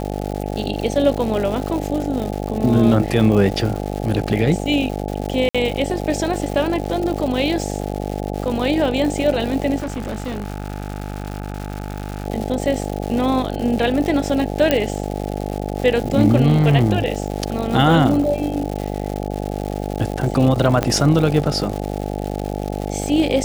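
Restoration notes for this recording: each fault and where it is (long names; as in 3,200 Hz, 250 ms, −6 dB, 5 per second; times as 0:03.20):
mains buzz 50 Hz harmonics 17 −25 dBFS
surface crackle 240 per second −25 dBFS
0:05.49–0:05.55: drop-out 56 ms
0:09.78–0:12.26: clipping −21.5 dBFS
0:14.71: click −2 dBFS
0:20.83: click −4 dBFS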